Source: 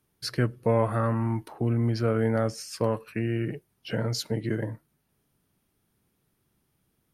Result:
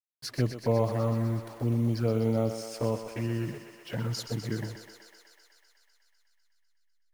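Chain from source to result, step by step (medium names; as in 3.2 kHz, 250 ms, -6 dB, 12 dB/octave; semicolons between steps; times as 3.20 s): send-on-delta sampling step -44 dBFS; touch-sensitive flanger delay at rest 9.2 ms, full sweep at -21 dBFS; thinning echo 125 ms, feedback 80%, high-pass 370 Hz, level -8.5 dB; trim -1.5 dB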